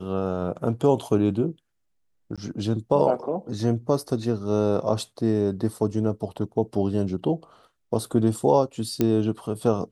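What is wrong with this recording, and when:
0:02.36–0:02.38: drop-out 16 ms
0:09.01: click −9 dBFS

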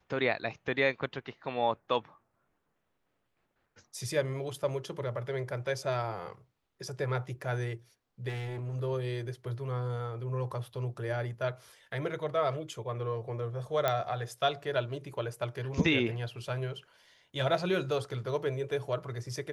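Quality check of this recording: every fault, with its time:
0:08.28–0:08.76: clipping −33.5 dBFS
0:13.88: click −14 dBFS

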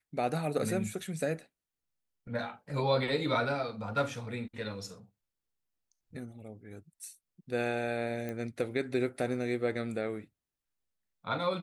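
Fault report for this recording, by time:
0:08.29: click −25 dBFS

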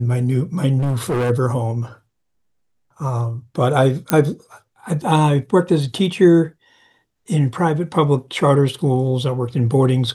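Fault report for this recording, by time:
0:00.78–0:01.31: clipping −16.5 dBFS
0:04.10: click −1 dBFS

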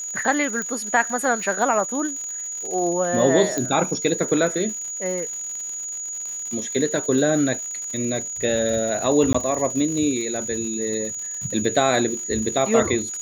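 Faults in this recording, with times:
surface crackle 140 per second −30 dBFS
whistle 6,800 Hz −28 dBFS
0:00.62: click
0:03.58: click −10 dBFS
0:09.33–0:09.35: drop-out 15 ms

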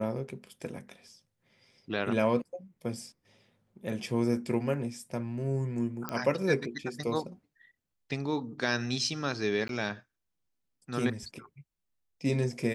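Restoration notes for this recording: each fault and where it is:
0:06.09: click −17 dBFS
0:09.68–0:09.69: drop-out 12 ms

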